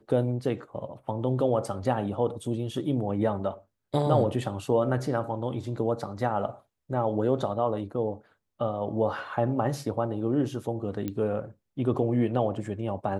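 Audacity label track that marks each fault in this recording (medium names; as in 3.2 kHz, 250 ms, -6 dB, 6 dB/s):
11.080000	11.080000	pop -19 dBFS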